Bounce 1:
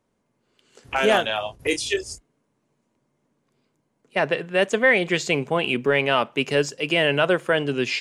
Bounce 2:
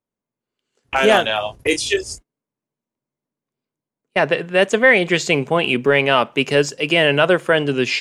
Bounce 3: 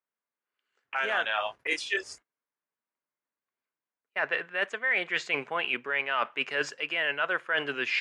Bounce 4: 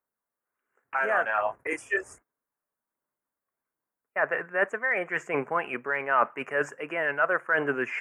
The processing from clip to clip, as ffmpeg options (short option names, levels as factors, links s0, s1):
-af "agate=range=0.0891:threshold=0.00794:ratio=16:detection=peak,volume=1.78"
-af "bandpass=f=1600:t=q:w=1.6:csg=0,areverse,acompressor=threshold=0.0398:ratio=6,areverse,volume=1.33"
-af "asuperstop=centerf=4000:order=4:qfactor=0.55,aphaser=in_gain=1:out_gain=1:delay=1.7:decay=0.24:speed=1.3:type=sinusoidal,volume=1.78"